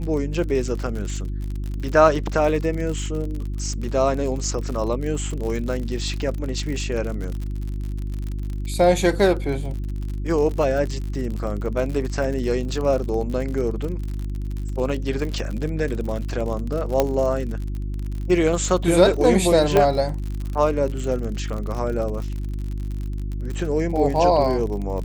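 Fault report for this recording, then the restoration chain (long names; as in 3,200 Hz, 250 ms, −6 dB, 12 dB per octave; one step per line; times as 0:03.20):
surface crackle 55 per second −28 dBFS
mains hum 50 Hz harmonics 7 −27 dBFS
0:17.00: click −5 dBFS
0:19.77: click −5 dBFS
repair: click removal
hum removal 50 Hz, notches 7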